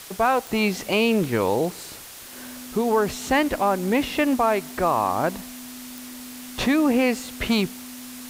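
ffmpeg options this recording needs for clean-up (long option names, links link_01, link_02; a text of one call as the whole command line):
ffmpeg -i in.wav -af "adeclick=threshold=4,bandreject=frequency=250:width=30,afwtdn=0.01" out.wav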